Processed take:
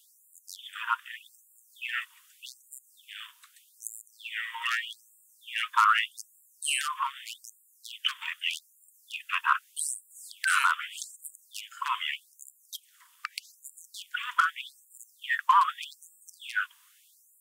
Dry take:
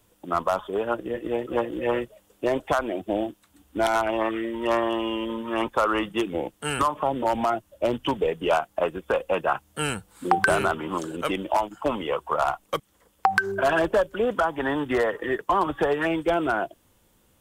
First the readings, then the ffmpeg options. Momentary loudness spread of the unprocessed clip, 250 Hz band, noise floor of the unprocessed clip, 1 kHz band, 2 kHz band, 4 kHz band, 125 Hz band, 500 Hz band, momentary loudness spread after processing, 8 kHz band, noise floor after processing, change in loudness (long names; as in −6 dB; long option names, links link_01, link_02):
6 LU, below −40 dB, −64 dBFS, −4.5 dB, −2.0 dB, +2.0 dB, below −40 dB, below −40 dB, 22 LU, +4.5 dB, −63 dBFS, −4.0 dB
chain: -af "acontrast=57,alimiter=limit=-9.5dB:level=0:latency=1:release=109,afftfilt=real='re*gte(b*sr/1024,900*pow(7100/900,0.5+0.5*sin(2*PI*0.82*pts/sr)))':imag='im*gte(b*sr/1024,900*pow(7100/900,0.5+0.5*sin(2*PI*0.82*pts/sr)))':win_size=1024:overlap=0.75"